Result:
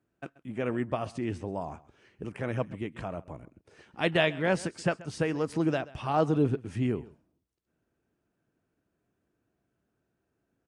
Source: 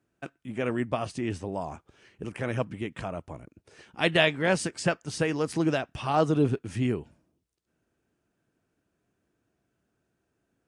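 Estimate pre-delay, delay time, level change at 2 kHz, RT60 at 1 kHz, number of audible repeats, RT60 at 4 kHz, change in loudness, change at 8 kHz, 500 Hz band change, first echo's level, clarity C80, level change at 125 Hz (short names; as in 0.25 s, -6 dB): none, 0.132 s, -4.0 dB, none, 1, none, -2.0 dB, -7.5 dB, -1.5 dB, -20.0 dB, none, -1.5 dB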